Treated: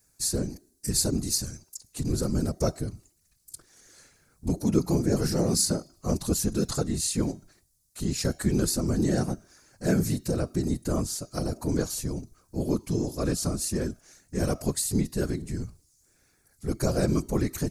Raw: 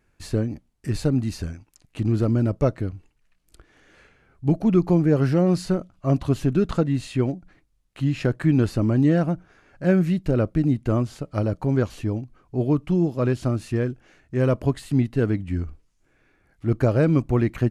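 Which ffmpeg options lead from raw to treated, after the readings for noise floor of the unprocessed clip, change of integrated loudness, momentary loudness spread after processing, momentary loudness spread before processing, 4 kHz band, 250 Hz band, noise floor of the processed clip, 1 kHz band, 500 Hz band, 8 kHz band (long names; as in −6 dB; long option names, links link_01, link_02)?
−66 dBFS, −5.0 dB, 12 LU, 11 LU, +7.5 dB, −6.0 dB, −67 dBFS, −5.0 dB, −6.0 dB, can't be measured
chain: -af "bandreject=frequency=315.2:width_type=h:width=4,bandreject=frequency=630.4:width_type=h:width=4,bandreject=frequency=945.6:width_type=h:width=4,bandreject=frequency=1260.8:width_type=h:width=4,bandreject=frequency=1576:width_type=h:width=4,bandreject=frequency=1891.2:width_type=h:width=4,bandreject=frequency=2206.4:width_type=h:width=4,bandreject=frequency=2521.6:width_type=h:width=4,bandreject=frequency=2836.8:width_type=h:width=4,bandreject=frequency=3152:width_type=h:width=4,bandreject=frequency=3467.2:width_type=h:width=4,bandreject=frequency=3782.4:width_type=h:width=4,bandreject=frequency=4097.6:width_type=h:width=4,bandreject=frequency=4412.8:width_type=h:width=4,bandreject=frequency=4728:width_type=h:width=4,bandreject=frequency=5043.2:width_type=h:width=4,bandreject=frequency=5358.4:width_type=h:width=4,bandreject=frequency=5673.6:width_type=h:width=4,bandreject=frequency=5988.8:width_type=h:width=4,bandreject=frequency=6304:width_type=h:width=4,bandreject=frequency=6619.2:width_type=h:width=4,bandreject=frequency=6934.4:width_type=h:width=4,aexciter=amount=12.8:drive=4.4:freq=4400,afftfilt=real='hypot(re,im)*cos(2*PI*random(0))':imag='hypot(re,im)*sin(2*PI*random(1))':win_size=512:overlap=0.75"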